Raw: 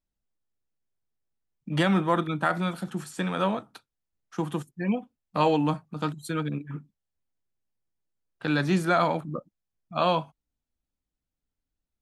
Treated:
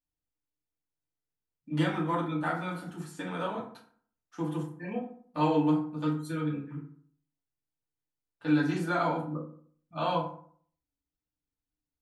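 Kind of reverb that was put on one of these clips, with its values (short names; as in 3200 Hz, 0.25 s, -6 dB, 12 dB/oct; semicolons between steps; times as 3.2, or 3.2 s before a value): FDN reverb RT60 0.54 s, low-frequency decay 1.1×, high-frequency decay 0.55×, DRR -5 dB; gain -12 dB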